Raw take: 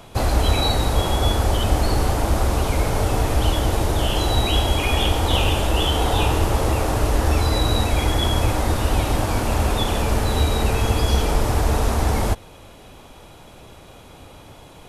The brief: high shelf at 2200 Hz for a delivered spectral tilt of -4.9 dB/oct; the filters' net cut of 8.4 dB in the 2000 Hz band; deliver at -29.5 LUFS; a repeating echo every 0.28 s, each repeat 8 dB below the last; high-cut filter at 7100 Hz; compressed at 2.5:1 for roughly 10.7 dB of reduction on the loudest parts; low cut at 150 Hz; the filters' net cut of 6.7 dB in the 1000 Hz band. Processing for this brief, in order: HPF 150 Hz; LPF 7100 Hz; bell 1000 Hz -7 dB; bell 2000 Hz -5.5 dB; high shelf 2200 Hz -6 dB; compressor 2.5:1, threshold -39 dBFS; feedback echo 0.28 s, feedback 40%, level -8 dB; gain +7 dB

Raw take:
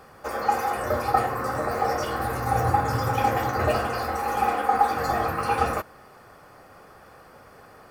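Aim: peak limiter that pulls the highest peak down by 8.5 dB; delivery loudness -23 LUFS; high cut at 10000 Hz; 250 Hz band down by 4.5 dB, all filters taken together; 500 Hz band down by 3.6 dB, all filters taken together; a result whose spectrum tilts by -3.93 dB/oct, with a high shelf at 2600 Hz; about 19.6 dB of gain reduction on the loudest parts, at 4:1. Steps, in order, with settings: LPF 10000 Hz; bell 250 Hz -5 dB; bell 500 Hz -3.5 dB; high shelf 2600 Hz +5 dB; compressor 4:1, threshold -42 dBFS; gain +22.5 dB; limiter -13 dBFS

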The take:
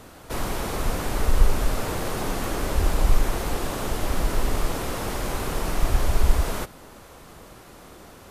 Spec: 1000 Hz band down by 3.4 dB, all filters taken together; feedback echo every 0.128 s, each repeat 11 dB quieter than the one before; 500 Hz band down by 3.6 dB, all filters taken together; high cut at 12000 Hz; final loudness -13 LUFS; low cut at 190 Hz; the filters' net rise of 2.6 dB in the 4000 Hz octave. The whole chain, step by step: HPF 190 Hz; LPF 12000 Hz; bell 500 Hz -3.5 dB; bell 1000 Hz -3.5 dB; bell 4000 Hz +3.5 dB; feedback echo 0.128 s, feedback 28%, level -11 dB; gain +18.5 dB

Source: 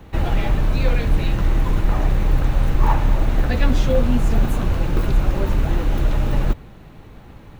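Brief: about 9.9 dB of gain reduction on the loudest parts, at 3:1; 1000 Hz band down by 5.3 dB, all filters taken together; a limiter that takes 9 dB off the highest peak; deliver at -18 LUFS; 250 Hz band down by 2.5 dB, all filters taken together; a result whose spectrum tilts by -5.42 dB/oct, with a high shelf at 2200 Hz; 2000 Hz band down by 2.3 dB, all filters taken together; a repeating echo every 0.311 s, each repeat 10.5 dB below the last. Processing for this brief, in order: bell 250 Hz -3 dB; bell 1000 Hz -7 dB; bell 2000 Hz -5 dB; high shelf 2200 Hz +7.5 dB; compressor 3:1, threshold -25 dBFS; limiter -24 dBFS; feedback echo 0.311 s, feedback 30%, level -10.5 dB; gain +18 dB

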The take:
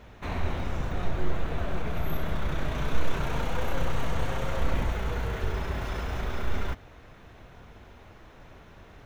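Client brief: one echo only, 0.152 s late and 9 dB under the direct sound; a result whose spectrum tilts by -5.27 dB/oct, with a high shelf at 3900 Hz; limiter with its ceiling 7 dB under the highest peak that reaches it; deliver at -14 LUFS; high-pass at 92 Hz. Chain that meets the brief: HPF 92 Hz; high shelf 3900 Hz -8 dB; limiter -28 dBFS; echo 0.152 s -9 dB; gain +23 dB

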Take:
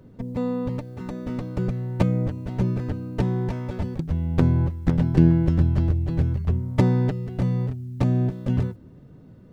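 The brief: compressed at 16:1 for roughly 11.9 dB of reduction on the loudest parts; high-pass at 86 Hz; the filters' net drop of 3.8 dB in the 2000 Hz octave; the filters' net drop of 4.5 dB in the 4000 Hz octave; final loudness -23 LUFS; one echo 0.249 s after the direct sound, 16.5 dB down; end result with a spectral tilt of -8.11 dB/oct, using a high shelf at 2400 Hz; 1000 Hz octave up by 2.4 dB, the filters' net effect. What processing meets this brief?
HPF 86 Hz; bell 1000 Hz +4 dB; bell 2000 Hz -7.5 dB; high shelf 2400 Hz +6 dB; bell 4000 Hz -9 dB; compressor 16:1, threshold -22 dBFS; echo 0.249 s -16.5 dB; gain +6 dB

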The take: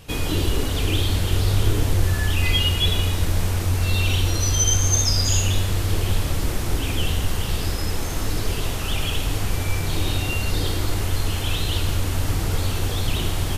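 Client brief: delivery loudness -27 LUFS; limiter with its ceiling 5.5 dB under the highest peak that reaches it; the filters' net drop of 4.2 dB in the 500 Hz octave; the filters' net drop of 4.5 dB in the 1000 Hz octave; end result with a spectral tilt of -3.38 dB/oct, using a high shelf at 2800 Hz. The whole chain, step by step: bell 500 Hz -4.5 dB; bell 1000 Hz -5 dB; high shelf 2800 Hz +3.5 dB; gain -4 dB; limiter -15 dBFS

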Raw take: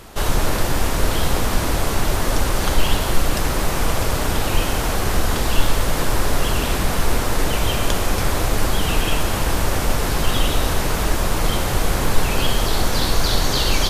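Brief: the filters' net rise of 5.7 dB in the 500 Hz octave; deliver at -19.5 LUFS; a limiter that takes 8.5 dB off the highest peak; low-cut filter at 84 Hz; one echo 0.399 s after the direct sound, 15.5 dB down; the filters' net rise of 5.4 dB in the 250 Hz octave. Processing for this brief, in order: HPF 84 Hz; bell 250 Hz +5.5 dB; bell 500 Hz +5.5 dB; limiter -13 dBFS; echo 0.399 s -15.5 dB; gain +2.5 dB

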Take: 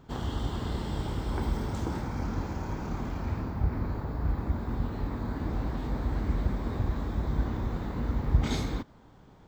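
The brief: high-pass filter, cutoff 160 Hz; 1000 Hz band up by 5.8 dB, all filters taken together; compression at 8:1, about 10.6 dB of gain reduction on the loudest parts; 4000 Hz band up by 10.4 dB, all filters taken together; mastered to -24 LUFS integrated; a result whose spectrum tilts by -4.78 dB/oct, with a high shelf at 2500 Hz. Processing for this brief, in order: HPF 160 Hz; bell 1000 Hz +5.5 dB; high shelf 2500 Hz +8 dB; bell 4000 Hz +5.5 dB; compressor 8:1, threshold -35 dBFS; gain +15 dB

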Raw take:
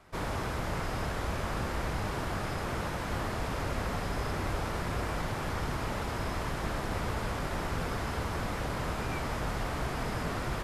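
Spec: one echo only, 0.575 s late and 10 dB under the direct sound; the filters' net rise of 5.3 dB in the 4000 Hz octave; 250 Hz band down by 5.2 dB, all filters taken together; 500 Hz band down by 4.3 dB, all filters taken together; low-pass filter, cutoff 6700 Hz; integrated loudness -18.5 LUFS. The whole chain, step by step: LPF 6700 Hz; bell 250 Hz -6.5 dB; bell 500 Hz -4 dB; bell 4000 Hz +7.5 dB; echo 0.575 s -10 dB; gain +16 dB

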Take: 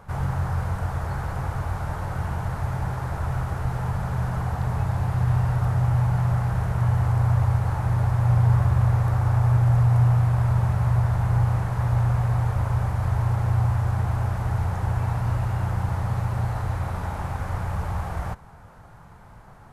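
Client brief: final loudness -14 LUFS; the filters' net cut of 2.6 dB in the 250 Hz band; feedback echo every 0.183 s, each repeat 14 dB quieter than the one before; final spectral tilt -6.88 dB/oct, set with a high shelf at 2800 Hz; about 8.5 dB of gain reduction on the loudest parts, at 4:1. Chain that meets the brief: bell 250 Hz -8 dB; high shelf 2800 Hz +4.5 dB; compressor 4:1, threshold -27 dBFS; feedback echo 0.183 s, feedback 20%, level -14 dB; gain +16.5 dB

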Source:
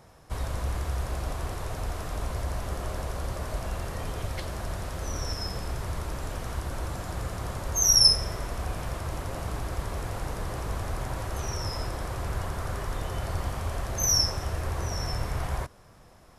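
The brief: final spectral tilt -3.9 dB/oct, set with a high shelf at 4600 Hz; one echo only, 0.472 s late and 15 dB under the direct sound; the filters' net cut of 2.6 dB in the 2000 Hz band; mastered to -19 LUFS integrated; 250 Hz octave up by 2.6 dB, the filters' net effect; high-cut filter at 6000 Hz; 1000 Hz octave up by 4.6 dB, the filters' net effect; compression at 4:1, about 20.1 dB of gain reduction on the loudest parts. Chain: LPF 6000 Hz; bell 250 Hz +3.5 dB; bell 1000 Hz +7 dB; bell 2000 Hz -8 dB; high shelf 4600 Hz +9 dB; compressor 4:1, threshold -38 dBFS; echo 0.472 s -15 dB; gain +21.5 dB

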